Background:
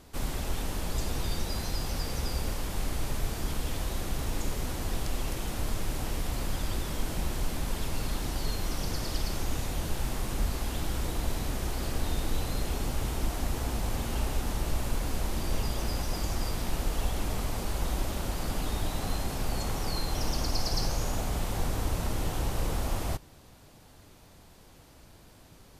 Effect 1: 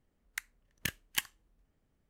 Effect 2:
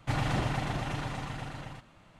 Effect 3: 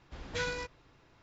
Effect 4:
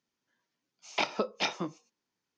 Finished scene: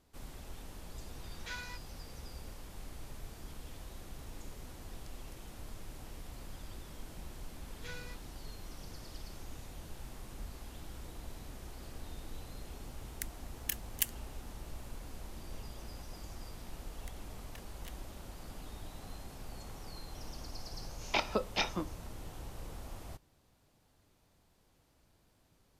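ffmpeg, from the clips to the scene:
-filter_complex "[3:a]asplit=2[a][b];[1:a]asplit=2[c][d];[0:a]volume=-15.5dB[e];[a]highpass=f=790:w=0.5412,highpass=f=790:w=1.3066[f];[b]asuperstop=centerf=710:order=4:qfactor=1.2[g];[c]crystalizer=i=7:c=0[h];[d]acompressor=threshold=-44dB:ratio=6:attack=3.2:release=140:knee=1:detection=peak[i];[f]atrim=end=1.22,asetpts=PTS-STARTPTS,volume=-7dB,afade=t=in:d=0.004:c=hsin,afade=t=out:st=1.216:d=0.004:c=hsin,adelay=1110[j];[g]atrim=end=1.22,asetpts=PTS-STARTPTS,volume=-11.5dB,afade=t=in:d=0.004:c=hsin,afade=t=out:st=1.216:d=0.004:c=hsin,adelay=7490[k];[h]atrim=end=2.09,asetpts=PTS-STARTPTS,volume=-16dB,afade=t=in:d=0.004:c=hsin,afade=t=out:st=2.086:d=0.004:c=hsin,adelay=566244S[l];[i]atrim=end=2.09,asetpts=PTS-STARTPTS,volume=-6dB,afade=t=in:d=0.004:c=hsin,afade=t=out:st=2.086:d=0.004:c=hsin,adelay=16700[m];[4:a]atrim=end=2.37,asetpts=PTS-STARTPTS,volume=-2dB,afade=t=in:d=0.004:c=hsin,afade=t=out:st=2.366:d=0.004:c=hsin,adelay=20160[n];[e][j][k][l][m][n]amix=inputs=6:normalize=0"

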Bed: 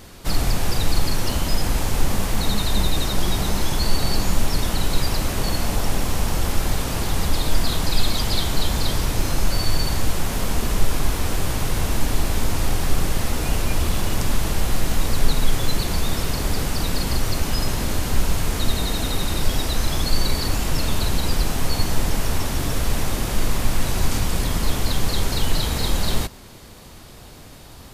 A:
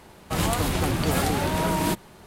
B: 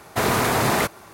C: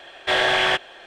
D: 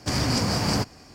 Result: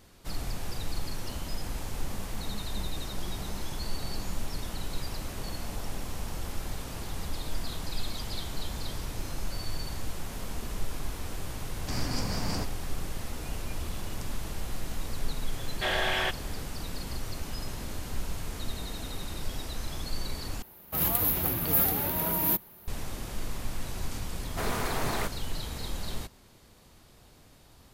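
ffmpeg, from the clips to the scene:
-filter_complex "[0:a]volume=-14dB[a];[1:a]aexciter=amount=11.4:drive=9.5:freq=12k[b];[a]asplit=2[c][d];[c]atrim=end=20.624[e];[b]atrim=end=2.26,asetpts=PTS-STARTPTS,volume=-9dB[f];[d]atrim=start=22.876[g];[4:a]atrim=end=1.14,asetpts=PTS-STARTPTS,volume=-10dB,afade=t=in:d=0.004:c=hsin,afade=t=out:st=1.136:d=0.004:c=hsin,adelay=11810[h];[3:a]atrim=end=1.06,asetpts=PTS-STARTPTS,volume=-9.5dB,afade=t=in:d=0.004:c=hsin,afade=t=out:st=1.056:d=0.004:c=hsin,adelay=15540[i];[2:a]atrim=end=1.13,asetpts=PTS-STARTPTS,volume=-12dB,afade=t=in:d=0.004:c=hsin,afade=t=out:st=1.126:d=0.004:c=hsin,adelay=24410[j];[e][f]acrossfade=d=0.004:c1=hsin:c2=hsin[k];[k][g]acrossfade=d=0.004:c1=hsin:c2=hsin[l];[l][h][i][j]amix=inputs=4:normalize=0"

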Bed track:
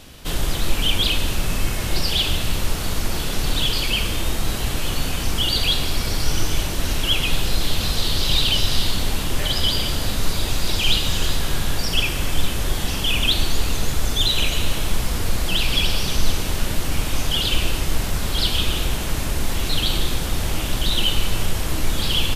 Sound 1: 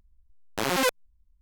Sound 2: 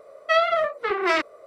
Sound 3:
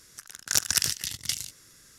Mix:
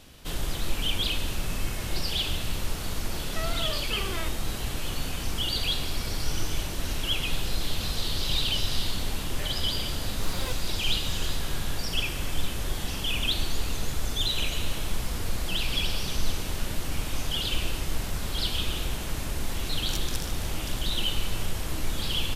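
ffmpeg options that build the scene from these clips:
-filter_complex "[0:a]volume=-8dB[a];[2:a]acompressor=threshold=-26dB:ratio=3:attack=0.1:release=35:knee=1:detection=peak,atrim=end=1.46,asetpts=PTS-STARTPTS,volume=-8dB,afade=t=in:d=0.004:c=hsin,afade=t=out:st=1.456:d=0.004:c=hsin,adelay=3070[b];[1:a]atrim=end=1.41,asetpts=PTS-STARTPTS,volume=-15dB,afade=t=in:d=0.004:c=hsin,afade=t=out:st=1.406:d=0.004:c=hsin,adelay=9630[c];[3:a]atrim=end=1.98,asetpts=PTS-STARTPTS,volume=-15dB,afade=t=in:d=0.004:c=hsin,afade=t=out:st=1.976:d=0.004:c=hsin,adelay=19380[d];[a][b][c][d]amix=inputs=4:normalize=0"

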